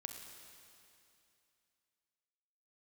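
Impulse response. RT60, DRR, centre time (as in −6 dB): 2.7 s, 4.0 dB, 64 ms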